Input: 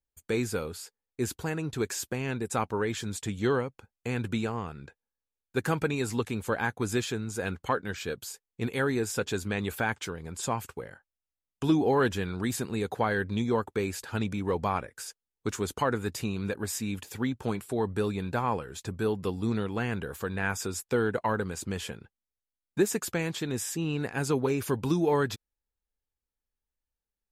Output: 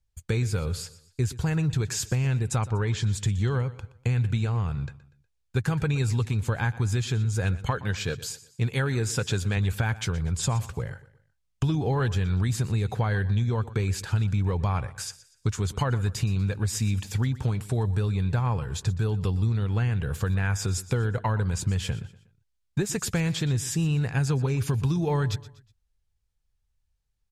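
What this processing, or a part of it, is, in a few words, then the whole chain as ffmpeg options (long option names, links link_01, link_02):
jukebox: -filter_complex "[0:a]asettb=1/sr,asplit=3[link_01][link_02][link_03];[link_01]atrim=end=2.574[link_04];[link_02]atrim=start=2.57:end=3.04,asetpts=PTS-STARTPTS,afade=type=in:duration=0.004:curve=qsin,afade=type=out:start_time=0.466:duration=0.004:curve=qsin,lowpass=7400[link_05];[link_03]atrim=start=3.036[link_06];[link_04][link_05]acrossfade=duration=0.004:curve1=hsin:curve2=qsin[link_07];[link_07][link_06]acrossfade=duration=0.004:curve1=qsin:curve2=hsin,aemphasis=mode=production:type=50fm,asettb=1/sr,asplit=3[link_08][link_09][link_10];[link_08]atrim=end=7.714[link_11];[link_09]atrim=start=7.71:end=9.57,asetpts=PTS-STARTPTS,afade=type=in:duration=0.004:curve=qsin,afade=type=out:start_time=1.856:duration=0.004:curve=qsin,highpass=frequency=140:poles=1[link_12];[link_10]atrim=start=9.566[link_13];[link_11][link_12]acrossfade=duration=0.004:curve1=hsin:curve2=qsin[link_14];[link_14][link_13]acrossfade=duration=0.004:curve1=qsin:curve2=hsin,lowpass=5500,lowshelf=frequency=180:width_type=q:width=1.5:gain=12.5,acompressor=threshold=-26dB:ratio=6,aecho=1:1:121|242|363:0.133|0.052|0.0203,volume=4dB"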